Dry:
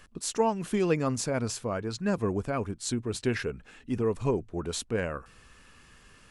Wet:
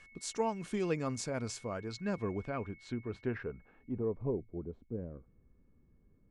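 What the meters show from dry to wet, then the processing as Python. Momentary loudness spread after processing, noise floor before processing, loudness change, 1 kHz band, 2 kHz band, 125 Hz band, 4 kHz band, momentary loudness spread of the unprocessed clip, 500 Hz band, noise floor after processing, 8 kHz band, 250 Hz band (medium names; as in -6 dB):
10 LU, -57 dBFS, -7.5 dB, -8.0 dB, -8.5 dB, -7.5 dB, -10.0 dB, 7 LU, -7.5 dB, -67 dBFS, -10.0 dB, -7.5 dB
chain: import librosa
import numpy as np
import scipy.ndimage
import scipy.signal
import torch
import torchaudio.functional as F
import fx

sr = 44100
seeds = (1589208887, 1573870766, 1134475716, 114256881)

y = x + 10.0 ** (-50.0 / 20.0) * np.sin(2.0 * np.pi * 2200.0 * np.arange(len(x)) / sr)
y = fx.filter_sweep_lowpass(y, sr, from_hz=7800.0, to_hz=330.0, start_s=1.7, end_s=4.83, q=0.93)
y = F.gain(torch.from_numpy(y), -7.5).numpy()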